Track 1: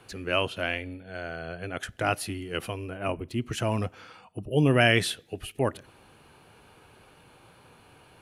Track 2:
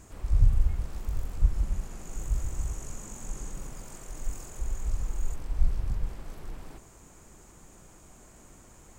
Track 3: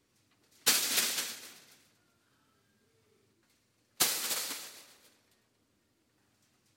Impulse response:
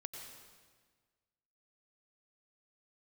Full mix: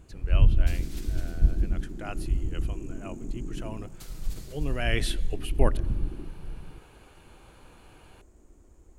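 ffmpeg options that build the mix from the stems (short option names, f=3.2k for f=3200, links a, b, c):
-filter_complex "[0:a]volume=-1.5dB,afade=t=in:st=4.81:d=0.43:silence=0.266073,asplit=2[a][b];[b]volume=-15dB[c];[1:a]afwtdn=0.0141,equalizer=f=340:t=o:w=1.5:g=14,volume=1.5dB[d];[2:a]alimiter=limit=-20dB:level=0:latency=1:release=393,volume=-16dB,asplit=2[e][f];[f]volume=-11.5dB[g];[3:a]atrim=start_sample=2205[h];[c][h]afir=irnorm=-1:irlink=0[i];[g]aecho=0:1:306|612|918|1224|1530|1836|2142:1|0.49|0.24|0.118|0.0576|0.0282|0.0138[j];[a][d][e][i][j]amix=inputs=5:normalize=0"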